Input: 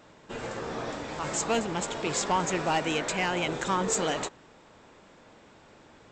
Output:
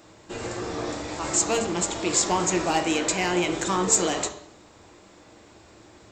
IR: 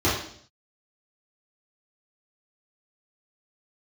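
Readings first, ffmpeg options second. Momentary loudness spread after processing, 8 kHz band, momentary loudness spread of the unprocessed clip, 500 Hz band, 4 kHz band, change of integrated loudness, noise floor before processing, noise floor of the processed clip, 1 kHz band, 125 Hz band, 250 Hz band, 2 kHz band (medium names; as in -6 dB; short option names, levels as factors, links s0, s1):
11 LU, +9.0 dB, 9 LU, +3.5 dB, +4.0 dB, +5.0 dB, -56 dBFS, -52 dBFS, +2.0 dB, +2.5 dB, +5.5 dB, +2.0 dB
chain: -filter_complex "[0:a]bass=f=250:g=0,treble=f=4000:g=9,asplit=2[s0][s1];[1:a]atrim=start_sample=2205[s2];[s1][s2]afir=irnorm=-1:irlink=0,volume=0.0891[s3];[s0][s3]amix=inputs=2:normalize=0"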